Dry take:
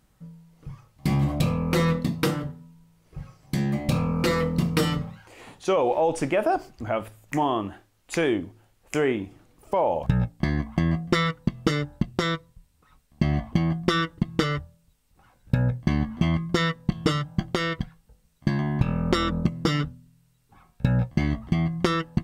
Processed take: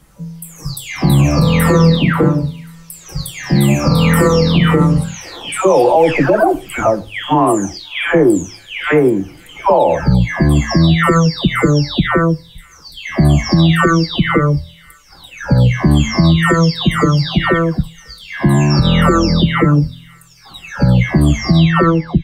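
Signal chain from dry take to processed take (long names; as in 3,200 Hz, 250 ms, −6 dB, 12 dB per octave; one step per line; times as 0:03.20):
every frequency bin delayed by itself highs early, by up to 631 ms
on a send: delay with a high-pass on its return 537 ms, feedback 56%, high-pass 2,500 Hz, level −21 dB
on the sum: boost into a limiter +16.5 dB
level −1 dB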